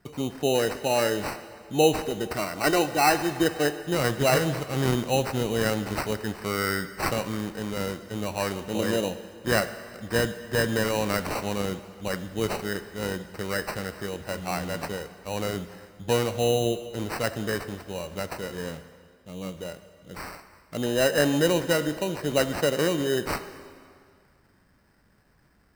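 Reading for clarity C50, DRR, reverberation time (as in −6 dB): 12.0 dB, 10.0 dB, 2.1 s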